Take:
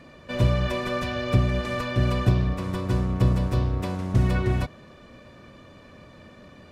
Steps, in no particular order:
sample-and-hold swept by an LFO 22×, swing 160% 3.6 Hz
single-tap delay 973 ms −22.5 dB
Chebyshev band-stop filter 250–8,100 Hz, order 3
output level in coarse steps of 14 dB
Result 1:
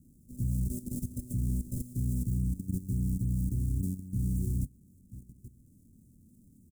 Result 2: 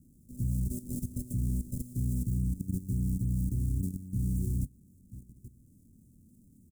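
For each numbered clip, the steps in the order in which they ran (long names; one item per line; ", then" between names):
single-tap delay, then output level in coarse steps, then sample-and-hold swept by an LFO, then Chebyshev band-stop filter
single-tap delay, then sample-and-hold swept by an LFO, then output level in coarse steps, then Chebyshev band-stop filter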